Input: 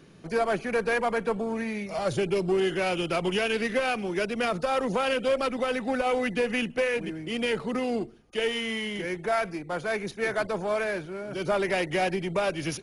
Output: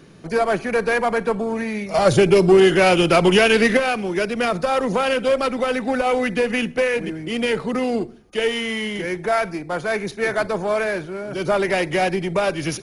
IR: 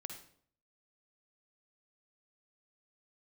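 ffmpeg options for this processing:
-filter_complex "[0:a]asettb=1/sr,asplit=3[a][b][c];[a]atrim=end=1.944[d];[b]atrim=start=1.94:end=3.77,asetpts=PTS-STARTPTS,afade=t=in:d=0.004:c=qsin,afade=t=out:st=1.826:d=0.004:c=qsin,acontrast=56[e];[c]atrim=start=3.766[f];[d][e]acrossfade=d=0.004:c1=hsin:c2=qsin[g];[g][f]acrossfade=d=0.004:c1=qsin:c2=hsin,asplit=2[h][i];[i]asuperstop=centerf=2900:order=4:qfactor=3.2[j];[1:a]atrim=start_sample=2205,asetrate=57330,aresample=44100[k];[j][k]afir=irnorm=-1:irlink=0,volume=-8dB[l];[h][l]amix=inputs=2:normalize=0,volume=5dB"

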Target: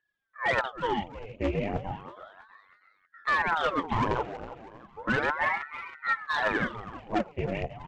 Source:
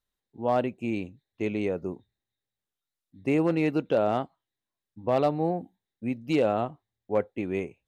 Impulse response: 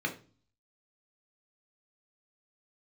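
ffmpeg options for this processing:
-af "highshelf=f=3.1k:t=q:w=1.5:g=-9,aphaser=in_gain=1:out_gain=1:delay=5:decay=0.71:speed=1.7:type=triangular,aresample=16000,volume=19.5dB,asoftclip=hard,volume=-19.5dB,aresample=44100,aecho=1:1:322|644|966|1288:0.224|0.0873|0.0341|0.0133,aeval=exprs='val(0)*sin(2*PI*920*n/s+920*0.85/0.34*sin(2*PI*0.34*n/s))':c=same"

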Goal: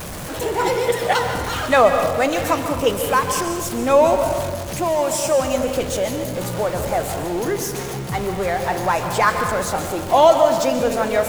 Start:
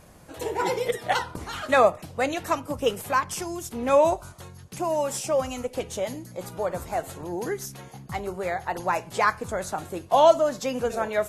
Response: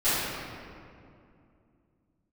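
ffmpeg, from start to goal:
-filter_complex "[0:a]aeval=exprs='val(0)+0.5*0.0299*sgn(val(0))':c=same,asplit=2[a][b];[1:a]atrim=start_sample=2205,asetrate=74970,aresample=44100,adelay=121[c];[b][c]afir=irnorm=-1:irlink=0,volume=-17dB[d];[a][d]amix=inputs=2:normalize=0,volume=4dB"

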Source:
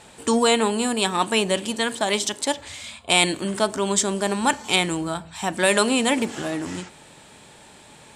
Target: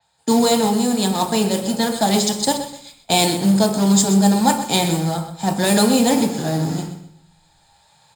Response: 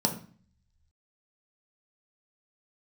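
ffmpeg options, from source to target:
-filter_complex "[0:a]agate=range=-15dB:threshold=-35dB:ratio=16:detection=peak,acrossover=split=100|700|4600[a][b][c][d];[b]acrusher=bits=4:mix=0:aa=0.5[e];[a][e][c][d]amix=inputs=4:normalize=0,aresample=22050,aresample=44100,acrusher=bits=2:mode=log:mix=0:aa=0.000001,aecho=1:1:126|252|378:0.266|0.0718|0.0194[f];[1:a]atrim=start_sample=2205,asetrate=39249,aresample=44100[g];[f][g]afir=irnorm=-1:irlink=0,dynaudnorm=f=510:g=3:m=4.5dB,adynamicequalizer=threshold=0.0224:dfrequency=5200:dqfactor=0.7:tfrequency=5200:tqfactor=0.7:attack=5:release=100:ratio=0.375:range=3.5:mode=boostabove:tftype=highshelf,volume=-3.5dB"

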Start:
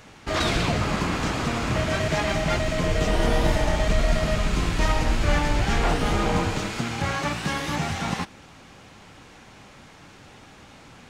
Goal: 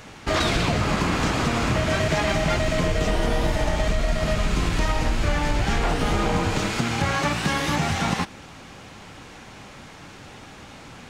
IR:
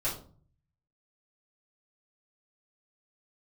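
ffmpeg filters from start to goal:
-af "acompressor=threshold=-23dB:ratio=6,volume=5dB"

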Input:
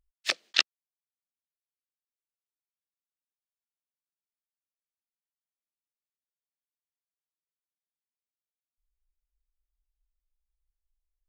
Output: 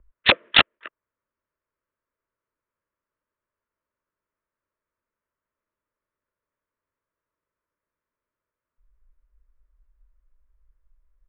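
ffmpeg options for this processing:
-filter_complex "[0:a]acrossover=split=150|1700[a][b][c];[b]aecho=1:1:266:0.075[d];[c]aeval=exprs='val(0)*gte(abs(val(0)),0.00891)':c=same[e];[a][d][e]amix=inputs=3:normalize=0,asuperstop=centerf=770:order=4:qfactor=3.2,equalizer=f=190:w=0.88:g=-6.5,aresample=8000,aeval=exprs='0.596*sin(PI/2*7.94*val(0)/0.596)':c=same,aresample=44100,volume=-1.5dB"

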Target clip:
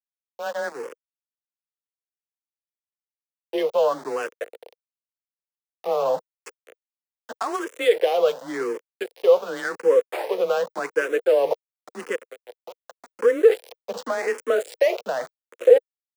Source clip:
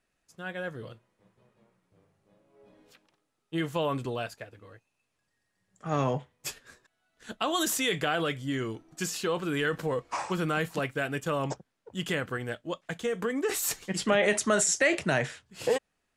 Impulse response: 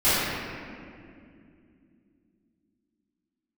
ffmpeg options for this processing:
-filter_complex "[0:a]highshelf=f=7.1k:g=5.5,alimiter=limit=-22dB:level=0:latency=1:release=403,asettb=1/sr,asplit=3[a][b][c];[a]atrim=end=12.154[d];[b]atrim=start=12.15:end=13.19,asetpts=PTS-STARTPTS,afade=t=in:d=0.004:c=qsin,afade=t=out:st=1.036:d=0.004:c=qsin,acompressor=threshold=-44dB:ratio=16[e];[c]atrim=start=13.186[f];[d][e]acrossfade=d=0.004:c1=hsin:c2=qsin[g];[g][f]acrossfade=d=0.004:c1=qsin:c2=hsin,asplit=2[h][i];[i]aecho=0:1:708:0.133[j];[h][j]amix=inputs=2:normalize=0,adynamicsmooth=sensitivity=6:basefreq=880,aeval=exprs='val(0)*gte(abs(val(0)),0.00944)':c=same,highpass=f=460:t=q:w=4.9,afreqshift=20,asplit=2[k][l];[l]afreqshift=0.89[m];[k][m]amix=inputs=2:normalize=1,volume=8.5dB"

